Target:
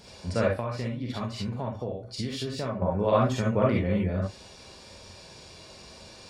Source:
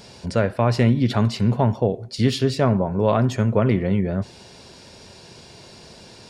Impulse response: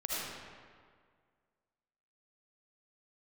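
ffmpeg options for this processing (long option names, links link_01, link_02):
-filter_complex "[1:a]atrim=start_sample=2205,atrim=end_sample=6174,asetrate=79380,aresample=44100[link_01];[0:a][link_01]afir=irnorm=-1:irlink=0,asettb=1/sr,asplit=3[link_02][link_03][link_04];[link_02]atrim=end=0.574[link_05];[link_03]atrim=start=0.57:end=2.82,asetpts=PTS-STARTPTS,afade=type=in:duration=0.004:curve=qsin,afade=type=out:start_time=2.246:duration=0.004:curve=qsin,acompressor=threshold=-29dB:ratio=6[link_06];[link_04]atrim=start=2.816[link_07];[link_05][link_06]acrossfade=duration=0.004:curve1=hsin:curve2=qsin[link_08];[link_08][link_07]acrossfade=duration=0.004:curve1=qsin:curve2=hsin"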